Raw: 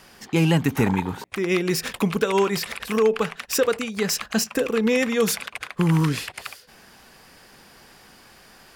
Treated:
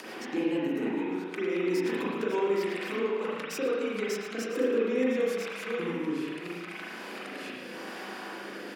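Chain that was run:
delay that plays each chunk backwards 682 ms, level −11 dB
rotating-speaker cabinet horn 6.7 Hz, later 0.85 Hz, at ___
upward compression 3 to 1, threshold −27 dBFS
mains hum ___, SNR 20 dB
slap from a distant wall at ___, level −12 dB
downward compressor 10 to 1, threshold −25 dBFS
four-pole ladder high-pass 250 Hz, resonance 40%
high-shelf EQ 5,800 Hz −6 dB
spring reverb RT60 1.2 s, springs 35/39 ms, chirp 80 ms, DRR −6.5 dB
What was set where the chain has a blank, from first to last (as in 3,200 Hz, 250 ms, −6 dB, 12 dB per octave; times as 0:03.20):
0:04.96, 50 Hz, 19 metres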